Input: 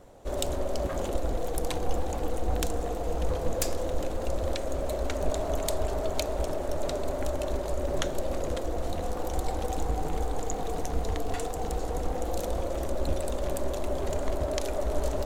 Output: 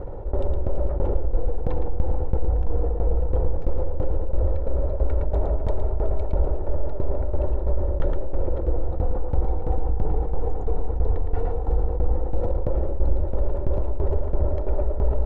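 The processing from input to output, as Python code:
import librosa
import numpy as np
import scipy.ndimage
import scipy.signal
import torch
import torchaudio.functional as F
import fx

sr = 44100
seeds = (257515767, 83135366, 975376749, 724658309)

p1 = scipy.signal.sosfilt(scipy.signal.butter(2, 1000.0, 'lowpass', fs=sr, output='sos'), x)
p2 = fx.low_shelf(p1, sr, hz=130.0, db=10.0)
p3 = p2 + 0.44 * np.pad(p2, (int(2.2 * sr / 1000.0), 0))[:len(p2)]
p4 = fx.tremolo_shape(p3, sr, shape='saw_down', hz=3.0, depth_pct=95)
p5 = p4 + fx.echo_single(p4, sr, ms=113, db=-7.0, dry=0)
p6 = fx.env_flatten(p5, sr, amount_pct=50)
y = p6 * 10.0 ** (-2.0 / 20.0)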